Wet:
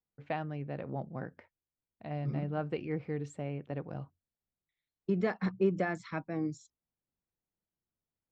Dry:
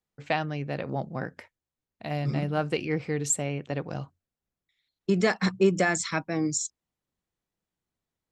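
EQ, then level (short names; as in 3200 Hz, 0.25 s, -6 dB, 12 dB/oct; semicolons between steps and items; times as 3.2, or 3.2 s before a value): tape spacing loss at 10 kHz 33 dB; -5.5 dB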